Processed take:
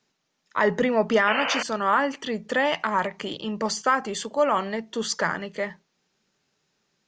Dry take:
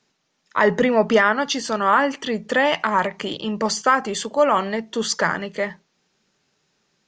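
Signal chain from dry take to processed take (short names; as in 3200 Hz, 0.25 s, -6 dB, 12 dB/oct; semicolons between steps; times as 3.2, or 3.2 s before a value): painted sound noise, 1.27–1.63, 440–3100 Hz -22 dBFS; gain -4.5 dB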